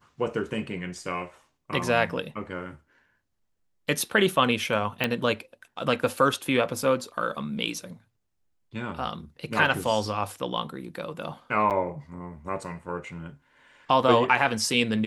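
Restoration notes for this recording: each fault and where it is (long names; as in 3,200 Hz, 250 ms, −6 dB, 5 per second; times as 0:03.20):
0:05.04: click −10 dBFS
0:11.70–0:11.71: drop-out 8.1 ms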